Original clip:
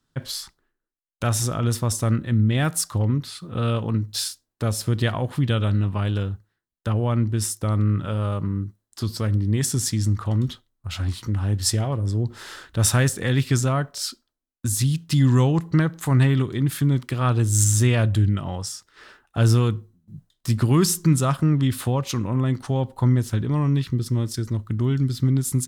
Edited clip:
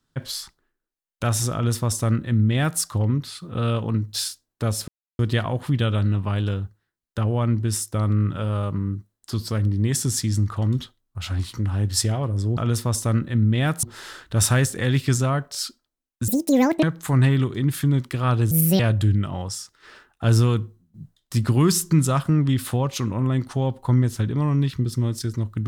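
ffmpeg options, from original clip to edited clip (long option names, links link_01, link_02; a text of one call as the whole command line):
ffmpeg -i in.wav -filter_complex "[0:a]asplit=8[link_01][link_02][link_03][link_04][link_05][link_06][link_07][link_08];[link_01]atrim=end=4.88,asetpts=PTS-STARTPTS,afade=type=out:start_time=4.876:duration=0.004:curve=hsin,apad=pad_dur=0.31[link_09];[link_02]atrim=start=4.88:end=12.262,asetpts=PTS-STARTPTS,afade=type=in:duration=0.004:curve=hsin[link_10];[link_03]atrim=start=1.538:end=2.802[link_11];[link_04]atrim=start=12.258:end=14.714[link_12];[link_05]atrim=start=14.71:end=15.81,asetpts=PTS-STARTPTS,asetrate=88200,aresample=44100[link_13];[link_06]atrim=start=15.806:end=17.494[link_14];[link_07]atrim=start=17.49:end=17.93,asetpts=PTS-STARTPTS,asetrate=68355,aresample=44100[link_15];[link_08]atrim=start=17.926[link_16];[link_09][link_10]concat=n=2:v=0:a=1[link_17];[link_17][link_11]acrossfade=duration=0.004:curve1=hsin:curve2=hsin[link_18];[link_18][link_12]acrossfade=duration=0.004:curve1=hsin:curve2=hsin[link_19];[link_19][link_13]acrossfade=duration=0.004:curve1=hsin:curve2=hsin[link_20];[link_20][link_14]acrossfade=duration=0.004:curve1=hsin:curve2=hsin[link_21];[link_21][link_15]acrossfade=duration=0.004:curve1=hsin:curve2=hsin[link_22];[link_22][link_16]acrossfade=duration=0.004:curve1=hsin:curve2=hsin" out.wav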